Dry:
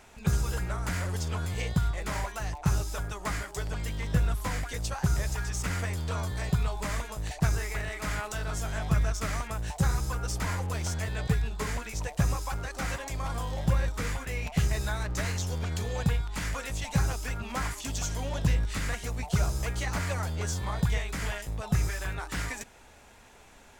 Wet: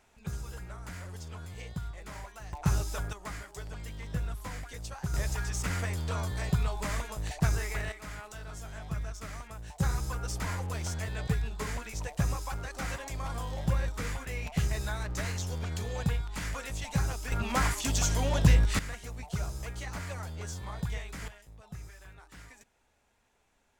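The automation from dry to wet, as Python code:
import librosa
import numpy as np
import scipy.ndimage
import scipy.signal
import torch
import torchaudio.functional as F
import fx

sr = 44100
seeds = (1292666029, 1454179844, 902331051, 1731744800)

y = fx.gain(x, sr, db=fx.steps((0.0, -11.0), (2.53, -1.0), (3.13, -8.0), (5.14, -1.0), (7.92, -10.0), (9.8, -3.0), (17.32, 4.5), (18.79, -7.5), (21.28, -17.5)))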